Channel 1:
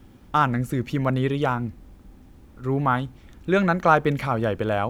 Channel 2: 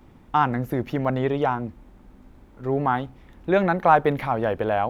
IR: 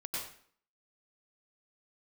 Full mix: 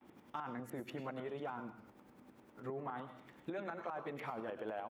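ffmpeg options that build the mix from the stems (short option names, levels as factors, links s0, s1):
-filter_complex "[0:a]acompressor=threshold=0.0794:ratio=6,aeval=exprs='val(0)*pow(10,-29*if(lt(mod(-10*n/s,1),2*abs(-10)/1000),1-mod(-10*n/s,1)/(2*abs(-10)/1000),(mod(-10*n/s,1)-2*abs(-10)/1000)/(1-2*abs(-10)/1000))/20)':c=same,volume=0.531,asplit=2[s0][s1];[s1]volume=0.668[s2];[1:a]lowpass=f=3200:w=0.5412,lowpass=f=3200:w=1.3066,alimiter=limit=0.168:level=0:latency=1,volume=-1,adelay=11,volume=0.422[s3];[2:a]atrim=start_sample=2205[s4];[s2][s4]afir=irnorm=-1:irlink=0[s5];[s0][s3][s5]amix=inputs=3:normalize=0,highpass=230,acompressor=threshold=0.00562:ratio=2.5"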